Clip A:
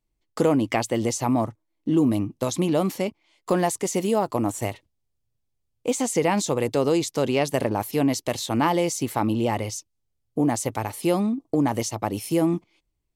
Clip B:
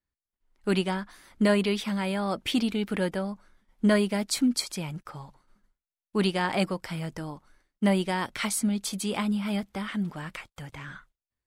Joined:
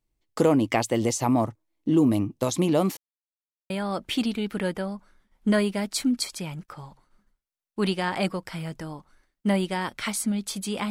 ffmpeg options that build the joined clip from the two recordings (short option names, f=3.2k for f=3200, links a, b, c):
-filter_complex "[0:a]apad=whole_dur=10.9,atrim=end=10.9,asplit=2[a][b];[a]atrim=end=2.97,asetpts=PTS-STARTPTS,afade=t=out:st=2.966:d=0.004:c=hsin[c];[b]atrim=start=2.97:end=3.7,asetpts=PTS-STARTPTS,volume=0[d];[1:a]atrim=start=2.07:end=9.27,asetpts=PTS-STARTPTS,afade=t=in:d=0.004:c=hsin[e];[c][d][e]concat=n=3:v=0:a=1"